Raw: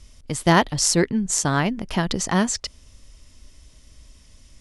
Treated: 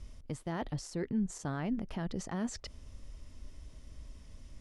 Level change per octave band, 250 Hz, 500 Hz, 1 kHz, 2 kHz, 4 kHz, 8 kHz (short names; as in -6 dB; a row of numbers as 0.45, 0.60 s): -12.5, -16.5, -20.0, -21.5, -22.5, -24.0 dB